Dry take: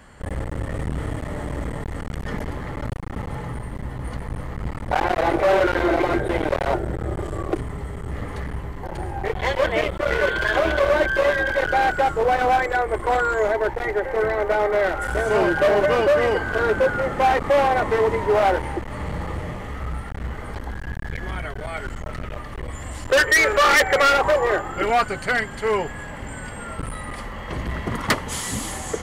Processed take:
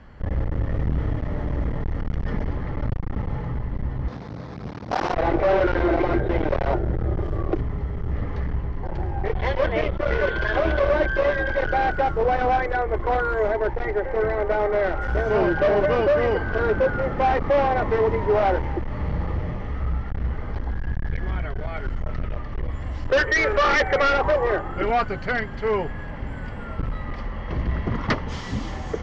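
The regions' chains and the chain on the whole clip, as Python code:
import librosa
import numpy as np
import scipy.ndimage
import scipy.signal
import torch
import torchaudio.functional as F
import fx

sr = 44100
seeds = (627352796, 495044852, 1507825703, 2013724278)

y = fx.chain(x, sr, fx.highpass(hz=150.0, slope=12),
    fx.resample_bad(factor=8, down='filtered', up='hold'),
    fx.doppler_dist(depth_ms=0.78), at=(4.08, 5.14))
y = scipy.signal.sosfilt(scipy.signal.cheby1(4, 1.0, 5700.0, 'lowpass', fs=sr, output='sos'), y)
y = fx.tilt_eq(y, sr, slope=-2.0)
y = y * librosa.db_to_amplitude(-2.5)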